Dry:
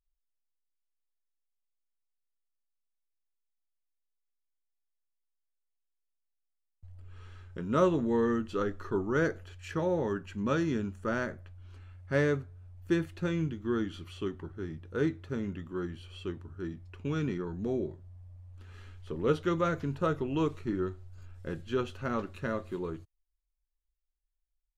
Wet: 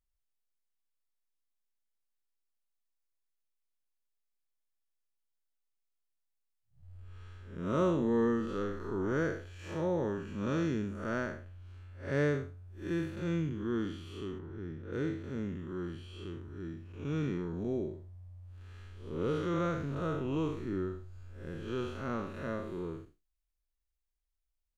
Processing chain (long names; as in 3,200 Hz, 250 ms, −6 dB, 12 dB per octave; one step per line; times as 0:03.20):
spectrum smeared in time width 170 ms
0:14.39–0:14.93: high-shelf EQ 4,600 Hz −11 dB